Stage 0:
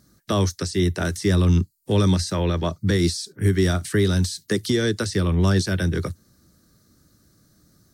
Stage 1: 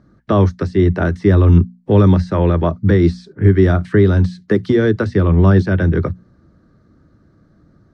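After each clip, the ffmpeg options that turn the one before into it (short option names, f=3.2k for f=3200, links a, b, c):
-af "lowpass=1.5k,bandreject=f=60:t=h:w=6,bandreject=f=120:t=h:w=6,bandreject=f=180:t=h:w=6,bandreject=f=240:t=h:w=6,volume=8.5dB"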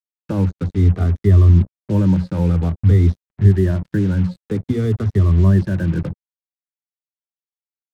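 -af "afftfilt=real='re*pow(10,13/40*sin(2*PI*(1.3*log(max(b,1)*sr/1024/100)/log(2)-(-0.52)*(pts-256)/sr)))':imag='im*pow(10,13/40*sin(2*PI*(1.3*log(max(b,1)*sr/1024/100)/log(2)-(-0.52)*(pts-256)/sr)))':win_size=1024:overlap=0.75,acrusher=bits=3:mix=0:aa=0.5,bass=f=250:g=12,treble=f=4k:g=-5,volume=-13dB"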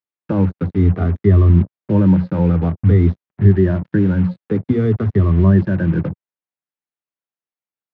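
-af "highpass=110,lowpass=2.3k,volume=4dB"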